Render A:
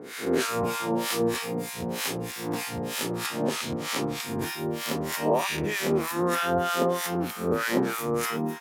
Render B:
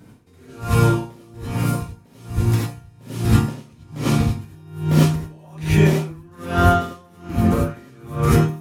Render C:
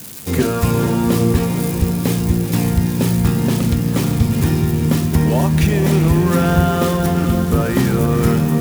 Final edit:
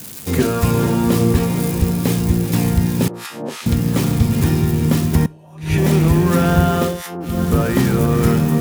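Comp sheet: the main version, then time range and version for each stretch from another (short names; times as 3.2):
C
3.08–3.66 from A
5.26–5.78 from B
6.91–7.32 from A, crossfade 0.24 s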